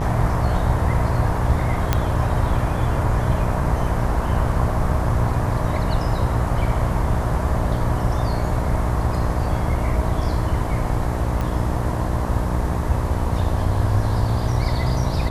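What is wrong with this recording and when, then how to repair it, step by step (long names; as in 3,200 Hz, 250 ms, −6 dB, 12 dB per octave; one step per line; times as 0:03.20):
mains buzz 60 Hz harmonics 19 −25 dBFS
0:01.93: click −4 dBFS
0:11.41: click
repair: click removal
hum removal 60 Hz, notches 19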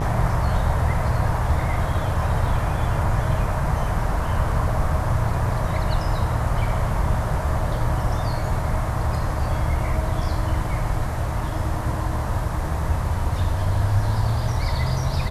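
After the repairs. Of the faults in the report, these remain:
0:11.41: click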